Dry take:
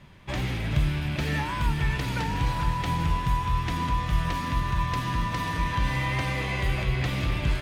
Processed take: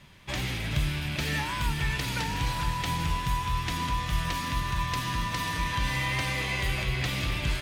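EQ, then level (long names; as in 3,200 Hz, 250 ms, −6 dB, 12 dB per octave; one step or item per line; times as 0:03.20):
high-shelf EQ 2,200 Hz +10.5 dB
−4.0 dB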